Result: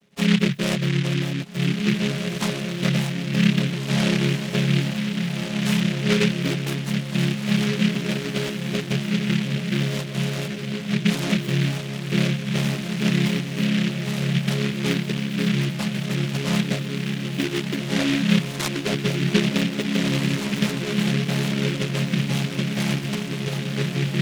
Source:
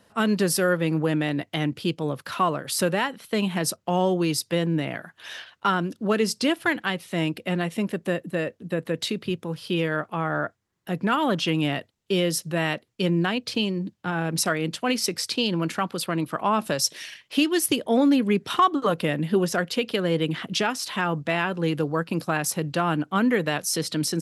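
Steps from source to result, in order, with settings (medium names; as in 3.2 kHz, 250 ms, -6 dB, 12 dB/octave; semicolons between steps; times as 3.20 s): vocoder on a held chord major triad, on C#3; bass shelf 180 Hz +4 dB; 22.99–23.53 s: compressor with a negative ratio -30 dBFS, ratio -0.5; distance through air 370 m; on a send: echo that smears into a reverb 1723 ms, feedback 43%, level -3 dB; on the sum: delay time shaken by noise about 2.4 kHz, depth 0.23 ms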